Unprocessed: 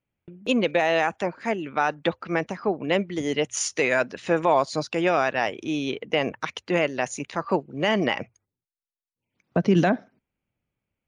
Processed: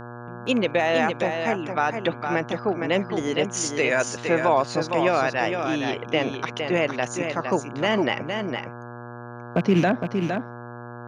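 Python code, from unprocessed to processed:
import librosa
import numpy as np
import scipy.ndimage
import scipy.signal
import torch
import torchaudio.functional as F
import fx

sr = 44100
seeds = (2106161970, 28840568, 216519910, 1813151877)

y = fx.rattle_buzz(x, sr, strikes_db=-24.0, level_db=-24.0)
y = y + 10.0 ** (-6.0 / 20.0) * np.pad(y, (int(461 * sr / 1000.0), 0))[:len(y)]
y = fx.dmg_buzz(y, sr, base_hz=120.0, harmonics=14, level_db=-38.0, tilt_db=-3, odd_only=False)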